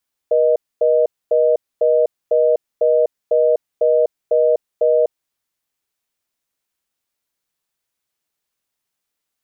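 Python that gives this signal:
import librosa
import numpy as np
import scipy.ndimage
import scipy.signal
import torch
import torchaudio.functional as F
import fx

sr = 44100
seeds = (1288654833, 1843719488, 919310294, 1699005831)

y = fx.call_progress(sr, length_s=4.86, kind='reorder tone', level_db=-14.0)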